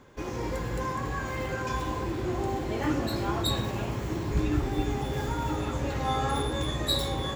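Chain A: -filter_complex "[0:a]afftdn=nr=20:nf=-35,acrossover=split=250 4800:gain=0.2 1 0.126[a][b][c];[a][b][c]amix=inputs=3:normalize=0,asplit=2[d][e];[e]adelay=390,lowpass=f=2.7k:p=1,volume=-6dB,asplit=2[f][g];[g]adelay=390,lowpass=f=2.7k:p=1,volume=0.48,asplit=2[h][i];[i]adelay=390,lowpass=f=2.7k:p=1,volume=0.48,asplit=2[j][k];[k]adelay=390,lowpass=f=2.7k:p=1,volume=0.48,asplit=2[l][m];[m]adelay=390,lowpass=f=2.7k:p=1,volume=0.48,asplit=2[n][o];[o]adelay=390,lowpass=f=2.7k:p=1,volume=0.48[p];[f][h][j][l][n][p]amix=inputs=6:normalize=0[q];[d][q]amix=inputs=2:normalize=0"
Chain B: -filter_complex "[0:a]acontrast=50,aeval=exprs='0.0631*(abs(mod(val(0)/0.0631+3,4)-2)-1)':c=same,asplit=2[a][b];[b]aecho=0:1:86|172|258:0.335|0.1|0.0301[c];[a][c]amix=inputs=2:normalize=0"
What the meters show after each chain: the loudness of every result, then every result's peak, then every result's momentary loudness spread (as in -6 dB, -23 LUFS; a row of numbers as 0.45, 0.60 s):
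-32.5, -28.5 LUFS; -17.0, -21.0 dBFS; 5, 2 LU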